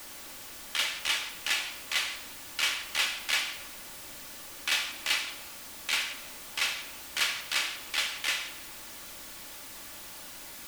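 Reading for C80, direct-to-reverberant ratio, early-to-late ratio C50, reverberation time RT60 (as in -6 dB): 12.0 dB, 4.0 dB, 10.0 dB, 1.4 s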